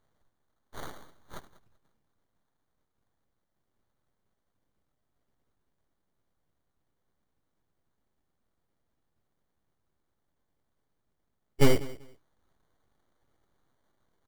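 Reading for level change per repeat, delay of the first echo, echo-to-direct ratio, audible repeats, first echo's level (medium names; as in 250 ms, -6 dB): -14.0 dB, 193 ms, -19.0 dB, 2, -19.0 dB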